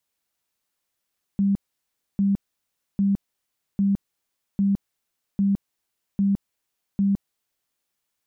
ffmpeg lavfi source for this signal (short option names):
-f lavfi -i "aevalsrc='0.141*sin(2*PI*198*mod(t,0.8))*lt(mod(t,0.8),32/198)':d=6.4:s=44100"